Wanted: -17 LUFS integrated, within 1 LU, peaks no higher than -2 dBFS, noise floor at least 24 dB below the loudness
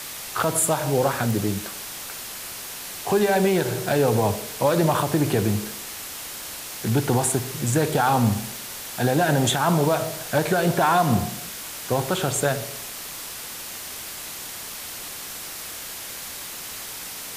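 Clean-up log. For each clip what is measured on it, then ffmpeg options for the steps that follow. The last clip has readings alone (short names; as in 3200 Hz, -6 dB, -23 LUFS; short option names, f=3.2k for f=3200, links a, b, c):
noise floor -36 dBFS; noise floor target -49 dBFS; loudness -24.5 LUFS; peak -9.0 dBFS; loudness target -17.0 LUFS
-> -af "afftdn=nr=13:nf=-36"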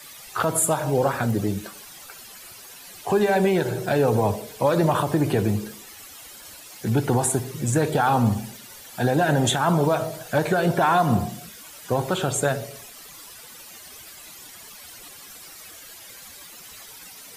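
noise floor -44 dBFS; noise floor target -47 dBFS
-> -af "afftdn=nr=6:nf=-44"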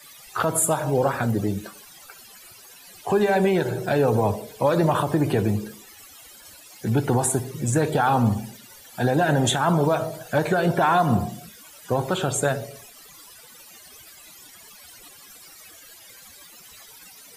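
noise floor -48 dBFS; loudness -22.5 LUFS; peak -10.0 dBFS; loudness target -17.0 LUFS
-> -af "volume=5.5dB"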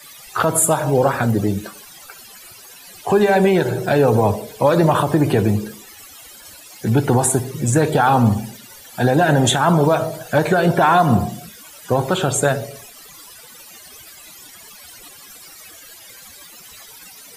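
loudness -17.0 LUFS; peak -4.5 dBFS; noise floor -42 dBFS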